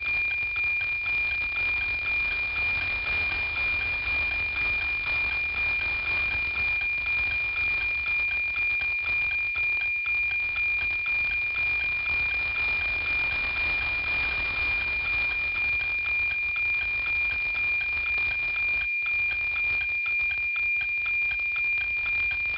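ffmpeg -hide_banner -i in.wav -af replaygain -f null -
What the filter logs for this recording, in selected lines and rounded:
track_gain = +7.0 dB
track_peak = 0.083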